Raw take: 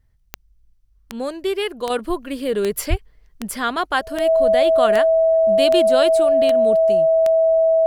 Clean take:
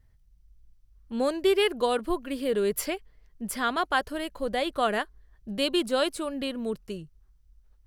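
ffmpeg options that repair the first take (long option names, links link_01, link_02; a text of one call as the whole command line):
ffmpeg -i in.wav -filter_complex "[0:a]adeclick=threshold=4,bandreject=frequency=650:width=30,asplit=3[link_01][link_02][link_03];[link_01]afade=type=out:start_time=2.89:duration=0.02[link_04];[link_02]highpass=frequency=140:width=0.5412,highpass=frequency=140:width=1.3066,afade=type=in:start_time=2.89:duration=0.02,afade=type=out:start_time=3.01:duration=0.02[link_05];[link_03]afade=type=in:start_time=3.01:duration=0.02[link_06];[link_04][link_05][link_06]amix=inputs=3:normalize=0,asetnsamples=nb_out_samples=441:pad=0,asendcmd='1.9 volume volume -5dB',volume=0dB" out.wav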